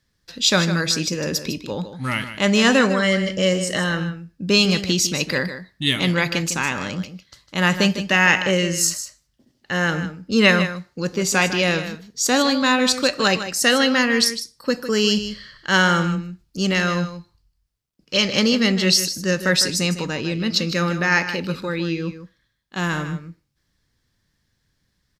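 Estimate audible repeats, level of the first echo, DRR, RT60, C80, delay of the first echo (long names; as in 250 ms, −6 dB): 1, −11.0 dB, no reverb audible, no reverb audible, no reverb audible, 154 ms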